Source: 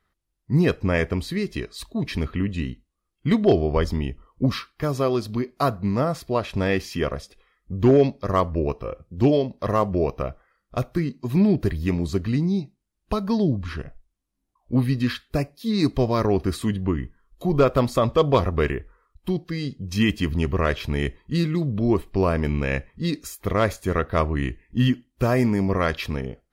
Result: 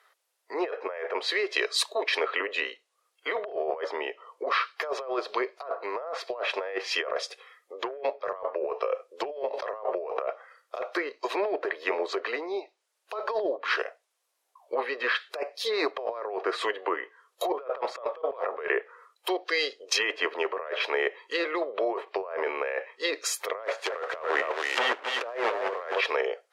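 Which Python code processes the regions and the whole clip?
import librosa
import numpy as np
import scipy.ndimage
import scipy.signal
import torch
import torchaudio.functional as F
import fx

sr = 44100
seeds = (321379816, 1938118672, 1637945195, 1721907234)

y = fx.chain(x, sr, fx.high_shelf(hz=11000.0, db=9.5),
    fx.sustainer(db_per_s=32.0), at=(9.48, 10.22))
y = fx.chain(y, sr, fx.quant_companded(bits=4),
    fx.echo_single(ms=271, db=-8.5), at=(23.63, 26.01))
y = fx.env_lowpass_down(y, sr, base_hz=1700.0, full_db=-19.5)
y = scipy.signal.sosfilt(scipy.signal.butter(8, 450.0, 'highpass', fs=sr, output='sos'), y)
y = fx.over_compress(y, sr, threshold_db=-36.0, ratio=-1.0)
y = y * librosa.db_to_amplitude(5.5)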